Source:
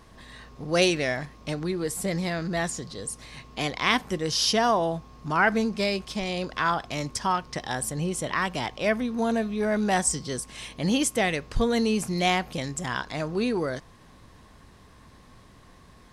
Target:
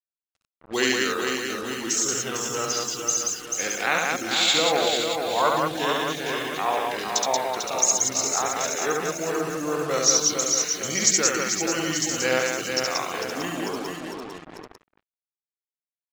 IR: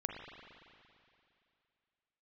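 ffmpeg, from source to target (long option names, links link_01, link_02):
-filter_complex "[0:a]highpass=500,asplit=2[link_01][link_02];[link_02]aecho=0:1:446|892|1338|1784|2230|2676:0.531|0.255|0.122|0.0587|0.0282|0.0135[link_03];[link_01][link_03]amix=inputs=2:normalize=0,asetrate=31183,aresample=44100,atempo=1.41421,lowpass=frequency=6800:width_type=q:width=4.3,asplit=2[link_04][link_05];[link_05]aecho=0:1:69.97|180.8:0.708|0.708[link_06];[link_04][link_06]amix=inputs=2:normalize=0,afftfilt=real='re*gte(hypot(re,im),0.0141)':imag='im*gte(hypot(re,im),0.0141)':win_size=1024:overlap=0.75,acrusher=bits=5:mix=0:aa=0.5,volume=-1dB"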